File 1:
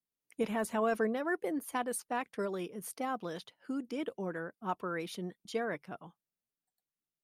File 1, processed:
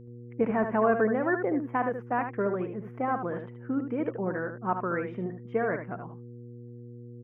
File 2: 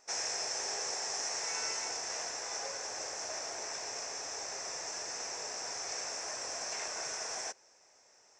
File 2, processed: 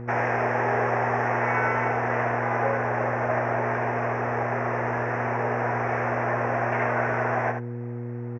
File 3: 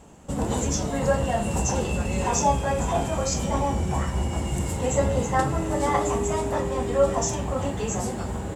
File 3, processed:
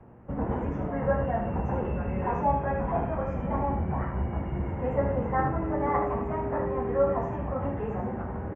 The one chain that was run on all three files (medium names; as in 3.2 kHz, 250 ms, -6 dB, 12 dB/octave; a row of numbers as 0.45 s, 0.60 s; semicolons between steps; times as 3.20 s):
inverse Chebyshev low-pass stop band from 3.9 kHz, stop band 40 dB; mains buzz 120 Hz, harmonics 4, -54 dBFS -5 dB/octave; on a send: delay 75 ms -7.5 dB; on the sum: peak normalisation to -12 dBFS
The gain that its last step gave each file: +6.5 dB, +18.0 dB, -4.0 dB